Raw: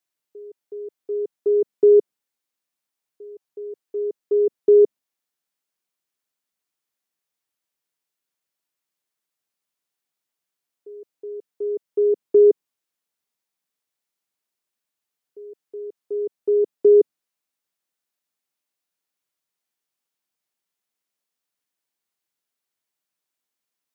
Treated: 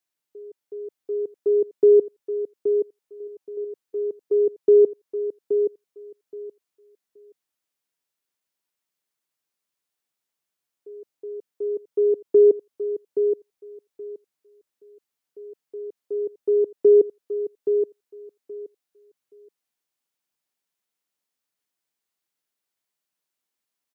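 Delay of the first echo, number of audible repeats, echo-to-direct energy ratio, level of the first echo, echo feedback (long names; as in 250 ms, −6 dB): 824 ms, 2, −7.5 dB, −7.5 dB, 18%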